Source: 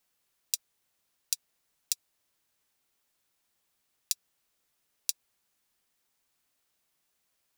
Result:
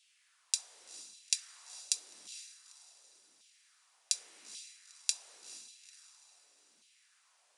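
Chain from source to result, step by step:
0:04.12–0:05.10: parametric band 2,200 Hz +5.5 dB 0.77 octaves
in parallel at +1.5 dB: brickwall limiter −12 dBFS, peak gain reduction 9 dB
on the sum: transient designer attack −4 dB, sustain +11 dB
downsampling to 22,050 Hz
on a send: feedback delay with all-pass diffusion 458 ms, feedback 44%, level −14 dB
on the sum: auto-filter high-pass saw down 0.88 Hz 210–3,200 Hz
coupled-rooms reverb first 0.28 s, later 3.7 s, from −21 dB, DRR 12.5 dB
level +1 dB

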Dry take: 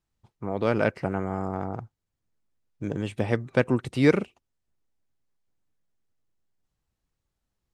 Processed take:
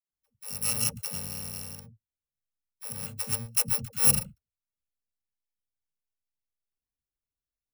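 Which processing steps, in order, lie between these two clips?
samples in bit-reversed order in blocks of 128 samples
leveller curve on the samples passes 1
all-pass dispersion lows, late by 116 ms, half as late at 330 Hz
expander for the loud parts 1.5 to 1, over −32 dBFS
level −4 dB

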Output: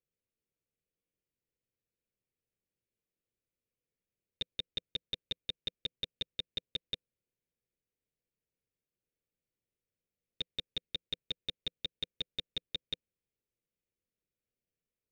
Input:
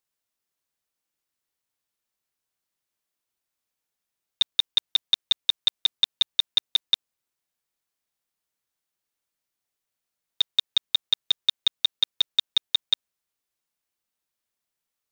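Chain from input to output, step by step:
drawn EQ curve 170 Hz 0 dB, 280 Hz −5 dB, 500 Hz −1 dB, 900 Hz −27 dB, 2,400 Hz −12 dB, 3,900 Hz −22 dB
level +4.5 dB

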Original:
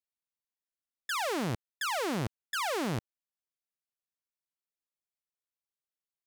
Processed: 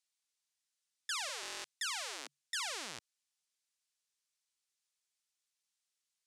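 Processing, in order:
meter weighting curve ITU-R 468
brickwall limiter −25.5 dBFS, peak gain reduction 12 dB
0:01.29–0:02.60: frequency shifter +140 Hz
buffer that repeats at 0:01.41, samples 1,024, times 9

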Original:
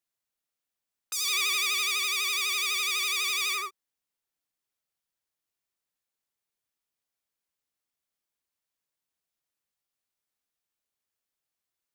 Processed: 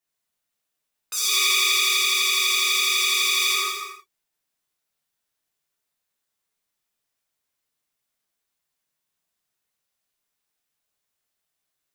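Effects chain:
reverb whose tail is shaped and stops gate 370 ms falling, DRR −6 dB

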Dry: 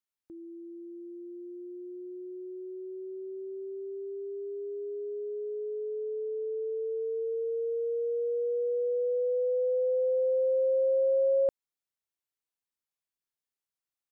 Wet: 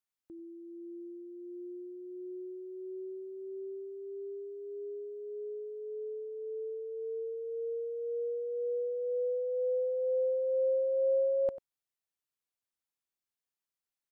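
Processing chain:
dynamic equaliser 440 Hz, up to −4 dB, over −42 dBFS, Q 3.5
slap from a distant wall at 16 metres, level −15 dB
level −2 dB

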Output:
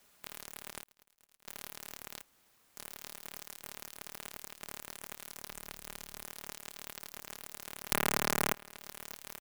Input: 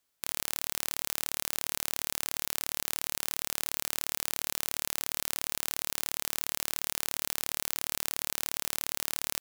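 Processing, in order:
0:07.92–0:08.52: band-pass filter 110–5,000 Hz
wrap-around overflow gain 11 dB
comb filter 4.9 ms, depth 88%
harmonic generator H 4 −14 dB, 6 −17 dB, 8 −21 dB, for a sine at −11.5 dBFS
0:00.83–0:01.48: volume swells 663 ms
0:02.22–0:02.77: fill with room tone
0:05.50–0:06.25: low-shelf EQ 140 Hz +10 dB
treble cut that deepens with the level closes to 2,800 Hz, closed at −46.5 dBFS
converter with an unsteady clock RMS 0.068 ms
level +12.5 dB

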